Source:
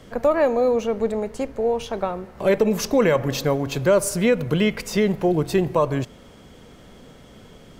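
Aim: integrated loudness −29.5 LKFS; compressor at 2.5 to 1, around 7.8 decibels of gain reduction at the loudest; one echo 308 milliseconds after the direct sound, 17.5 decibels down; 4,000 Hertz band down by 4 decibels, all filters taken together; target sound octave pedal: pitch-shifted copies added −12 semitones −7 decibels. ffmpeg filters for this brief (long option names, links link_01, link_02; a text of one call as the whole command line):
ffmpeg -i in.wav -filter_complex "[0:a]equalizer=frequency=4000:width_type=o:gain=-5.5,acompressor=threshold=-25dB:ratio=2.5,aecho=1:1:308:0.133,asplit=2[link_01][link_02];[link_02]asetrate=22050,aresample=44100,atempo=2,volume=-7dB[link_03];[link_01][link_03]amix=inputs=2:normalize=0,volume=-2.5dB" out.wav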